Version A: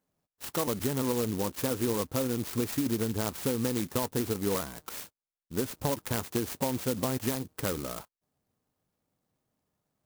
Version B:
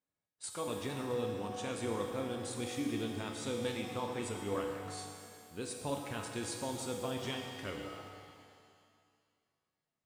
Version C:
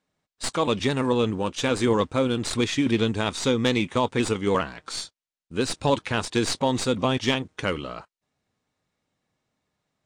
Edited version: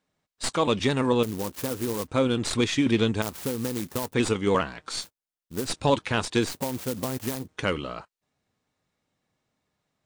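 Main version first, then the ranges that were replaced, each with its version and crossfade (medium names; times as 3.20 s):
C
1.23–2.08 s: from A
3.22–4.14 s: from A
5.03–5.67 s: from A, crossfade 0.06 s
6.48–7.46 s: from A, crossfade 0.16 s
not used: B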